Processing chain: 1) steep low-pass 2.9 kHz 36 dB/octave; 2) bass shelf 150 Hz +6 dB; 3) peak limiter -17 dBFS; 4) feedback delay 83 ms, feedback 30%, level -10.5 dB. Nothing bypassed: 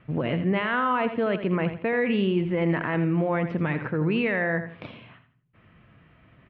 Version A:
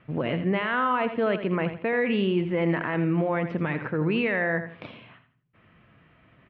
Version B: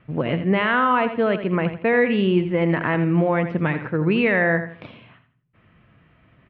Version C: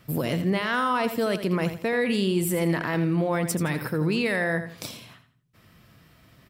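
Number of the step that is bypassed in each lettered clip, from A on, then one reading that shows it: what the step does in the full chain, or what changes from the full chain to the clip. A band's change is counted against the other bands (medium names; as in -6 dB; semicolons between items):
2, 125 Hz band -2.0 dB; 3, mean gain reduction 3.0 dB; 1, 4 kHz band +5.5 dB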